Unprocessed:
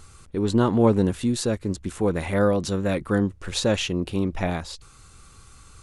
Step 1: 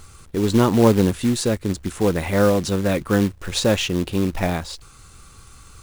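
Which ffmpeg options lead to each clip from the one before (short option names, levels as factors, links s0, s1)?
-af "acrusher=bits=4:mode=log:mix=0:aa=0.000001,volume=1.5"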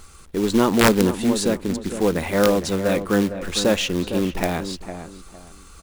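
-filter_complex "[0:a]equalizer=f=110:t=o:w=0.51:g=-14,asplit=2[s0][s1];[s1]adelay=457,lowpass=f=1400:p=1,volume=0.335,asplit=2[s2][s3];[s3]adelay=457,lowpass=f=1400:p=1,volume=0.29,asplit=2[s4][s5];[s5]adelay=457,lowpass=f=1400:p=1,volume=0.29[s6];[s0][s2][s4][s6]amix=inputs=4:normalize=0,aeval=exprs='(mod(2*val(0)+1,2)-1)/2':c=same"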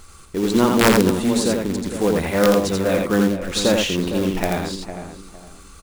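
-af "aecho=1:1:84:0.668"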